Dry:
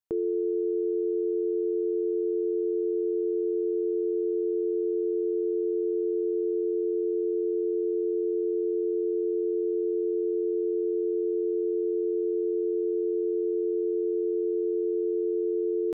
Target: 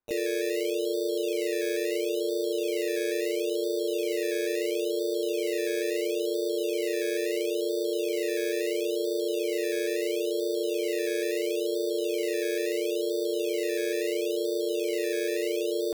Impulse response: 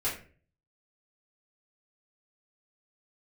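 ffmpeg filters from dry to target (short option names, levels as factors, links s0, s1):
-filter_complex "[0:a]acrusher=samples=16:mix=1:aa=0.000001:lfo=1:lforange=9.6:lforate=0.74,asplit=2[s0][s1];[s1]asetrate=58866,aresample=44100,atempo=0.749154,volume=0.708[s2];[s0][s2]amix=inputs=2:normalize=0,volume=0.708"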